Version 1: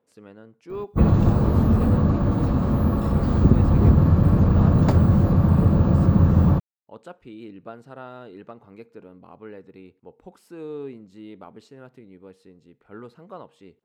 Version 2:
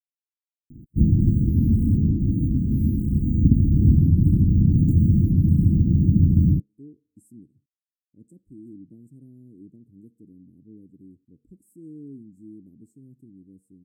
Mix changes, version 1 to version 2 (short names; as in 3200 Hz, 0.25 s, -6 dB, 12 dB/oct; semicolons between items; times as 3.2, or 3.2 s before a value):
speech: entry +1.25 s; master: add Chebyshev band-stop 310–8100 Hz, order 4